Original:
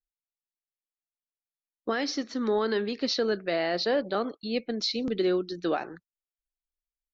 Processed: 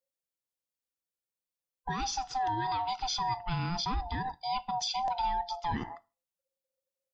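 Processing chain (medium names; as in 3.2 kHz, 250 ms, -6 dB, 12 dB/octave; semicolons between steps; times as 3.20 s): split-band scrambler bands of 500 Hz; peaking EQ 1.6 kHz -5 dB 2.3 oct; peak limiter -26 dBFS, peak gain reduction 8 dB; on a send: reverberation RT60 0.30 s, pre-delay 5 ms, DRR 16 dB; on the sum: trim +2 dB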